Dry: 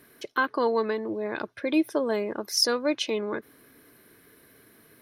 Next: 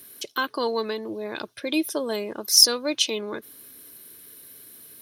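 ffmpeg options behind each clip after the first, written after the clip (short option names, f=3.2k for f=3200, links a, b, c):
-af "aexciter=amount=3:drive=7.4:freq=2.8k,volume=-1.5dB"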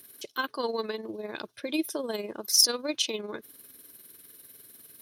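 -af "tremolo=f=20:d=0.55,volume=-2.5dB"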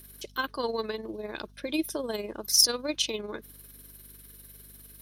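-af "aeval=exprs='val(0)+0.002*(sin(2*PI*50*n/s)+sin(2*PI*2*50*n/s)/2+sin(2*PI*3*50*n/s)/3+sin(2*PI*4*50*n/s)/4+sin(2*PI*5*50*n/s)/5)':c=same"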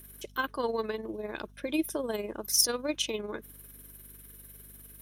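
-af "equalizer=f=4.5k:t=o:w=0.6:g=-10"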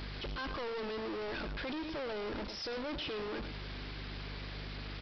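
-af "aeval=exprs='val(0)+0.5*0.0596*sgn(val(0))':c=same,aecho=1:1:107:0.299,aresample=11025,asoftclip=type=hard:threshold=-29.5dB,aresample=44100,volume=-8dB"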